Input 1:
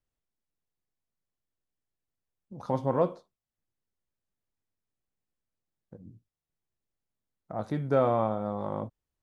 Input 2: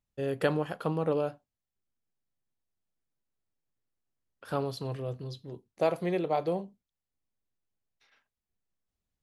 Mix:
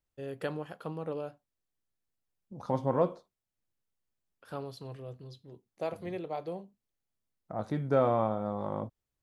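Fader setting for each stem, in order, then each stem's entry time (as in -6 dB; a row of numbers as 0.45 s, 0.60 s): -1.5 dB, -8.0 dB; 0.00 s, 0.00 s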